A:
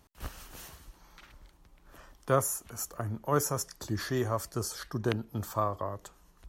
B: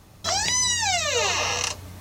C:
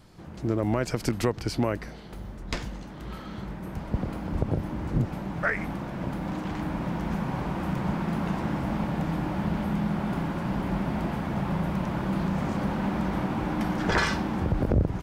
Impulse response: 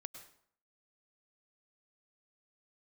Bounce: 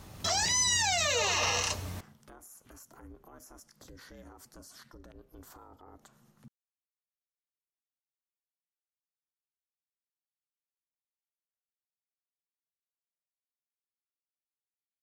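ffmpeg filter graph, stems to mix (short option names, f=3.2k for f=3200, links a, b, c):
-filter_complex "[0:a]acompressor=threshold=-40dB:ratio=3,aeval=exprs='val(0)*sin(2*PI*180*n/s)':c=same,alimiter=level_in=16.5dB:limit=-24dB:level=0:latency=1:release=79,volume=-16.5dB,volume=-2dB,asplit=2[a][b];[b]volume=-13dB[c];[1:a]volume=0dB,asplit=2[d][e];[e]volume=-13dB[f];[3:a]atrim=start_sample=2205[g];[c][f]amix=inputs=2:normalize=0[h];[h][g]afir=irnorm=-1:irlink=0[i];[a][d][i]amix=inputs=3:normalize=0,alimiter=limit=-20dB:level=0:latency=1:release=26"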